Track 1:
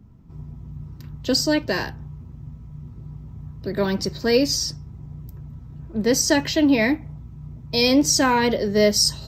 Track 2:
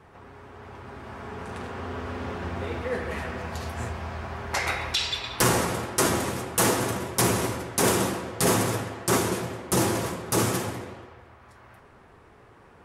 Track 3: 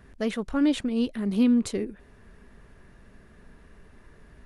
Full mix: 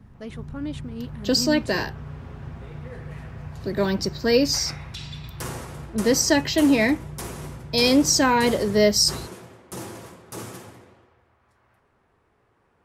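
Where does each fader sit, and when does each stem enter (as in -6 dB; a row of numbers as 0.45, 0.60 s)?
-0.5, -12.5, -9.5 dB; 0.00, 0.00, 0.00 s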